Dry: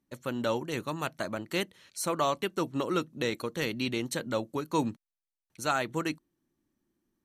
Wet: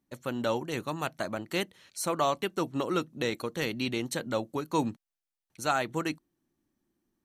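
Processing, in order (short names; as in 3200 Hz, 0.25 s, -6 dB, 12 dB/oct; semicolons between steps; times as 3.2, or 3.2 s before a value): bell 750 Hz +4 dB 0.27 oct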